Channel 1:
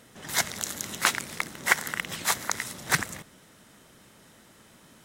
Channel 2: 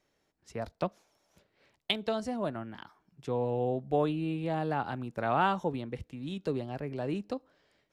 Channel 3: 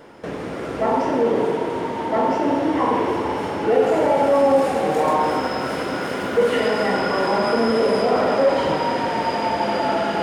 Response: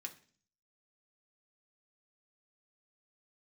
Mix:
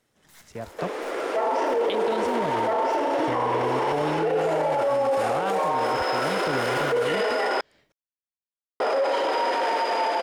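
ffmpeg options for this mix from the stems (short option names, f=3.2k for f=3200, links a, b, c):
-filter_complex "[0:a]aeval=exprs='(tanh(44.7*val(0)+0.6)-tanh(0.6))/44.7':c=same,volume=-15.5dB[a];[1:a]volume=0.5dB[b];[2:a]highpass=f=380:w=0.5412,highpass=f=380:w=1.3066,adelay=550,volume=-1.5dB,asplit=3[c][d][e];[c]atrim=end=7.61,asetpts=PTS-STARTPTS,afade=t=out:st=7.606:d=0.004:c=hsin[f];[d]atrim=start=7.61:end=8.8,asetpts=PTS-STARTPTS,volume=0[g];[e]atrim=start=8.8,asetpts=PTS-STARTPTS,afade=t=in:d=0.004:c=hsin[h];[f][g][h]concat=n=3:v=0:a=1[i];[b][i]amix=inputs=2:normalize=0,dynaudnorm=f=140:g=17:m=11dB,alimiter=limit=-11dB:level=0:latency=1:release=173,volume=0dB[j];[a][j]amix=inputs=2:normalize=0,alimiter=limit=-16.5dB:level=0:latency=1:release=10"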